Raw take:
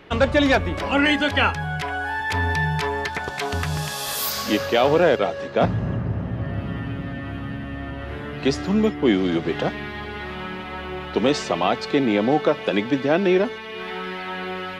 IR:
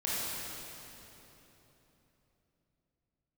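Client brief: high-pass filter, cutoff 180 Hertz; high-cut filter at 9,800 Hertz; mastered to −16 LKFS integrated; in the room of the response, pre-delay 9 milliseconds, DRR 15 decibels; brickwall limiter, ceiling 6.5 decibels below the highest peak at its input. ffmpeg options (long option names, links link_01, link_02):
-filter_complex "[0:a]highpass=180,lowpass=9800,alimiter=limit=-13dB:level=0:latency=1,asplit=2[link_01][link_02];[1:a]atrim=start_sample=2205,adelay=9[link_03];[link_02][link_03]afir=irnorm=-1:irlink=0,volume=-22.5dB[link_04];[link_01][link_04]amix=inputs=2:normalize=0,volume=9.5dB"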